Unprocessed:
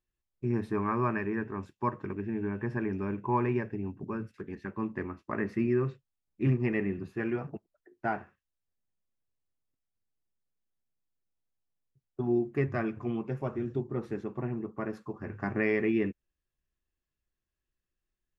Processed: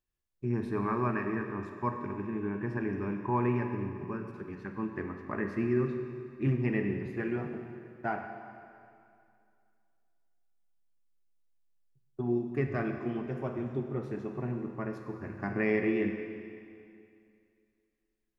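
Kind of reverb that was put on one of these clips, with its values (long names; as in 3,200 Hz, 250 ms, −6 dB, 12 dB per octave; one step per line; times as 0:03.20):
four-comb reverb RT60 2.4 s, combs from 33 ms, DRR 5 dB
level −2 dB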